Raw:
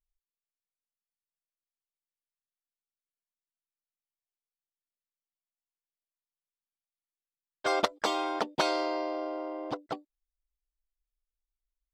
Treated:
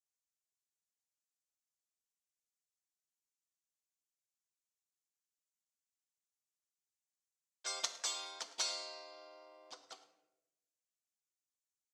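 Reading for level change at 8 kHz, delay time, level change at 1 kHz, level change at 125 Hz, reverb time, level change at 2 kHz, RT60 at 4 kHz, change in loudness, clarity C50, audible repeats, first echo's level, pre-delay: +5.0 dB, 107 ms, −19.0 dB, below −30 dB, 0.95 s, −13.5 dB, 0.55 s, −8.0 dB, 10.0 dB, 1, −17.5 dB, 4 ms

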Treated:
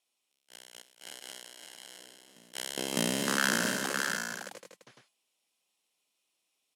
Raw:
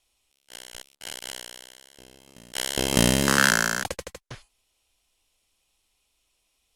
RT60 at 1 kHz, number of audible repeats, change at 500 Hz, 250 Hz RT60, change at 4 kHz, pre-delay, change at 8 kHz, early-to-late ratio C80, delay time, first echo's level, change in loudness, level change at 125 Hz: no reverb audible, 3, −7.5 dB, no reverb audible, −7.0 dB, no reverb audible, −7.0 dB, no reverb audible, 231 ms, −11.5 dB, −8.0 dB, −13.0 dB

